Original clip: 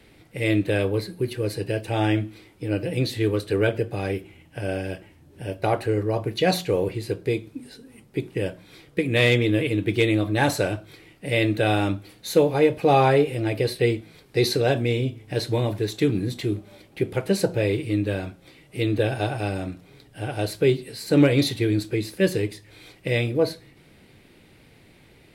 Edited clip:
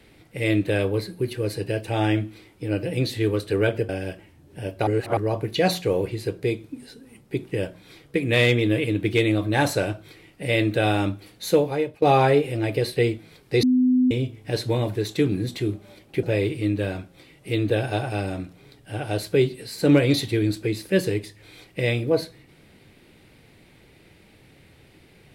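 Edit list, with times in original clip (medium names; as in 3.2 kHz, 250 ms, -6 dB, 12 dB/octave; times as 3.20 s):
3.89–4.72 s: delete
5.70–6.00 s: reverse
12.35–12.85 s: fade out, to -19.5 dB
14.46–14.94 s: bleep 253 Hz -15 dBFS
17.06–17.51 s: delete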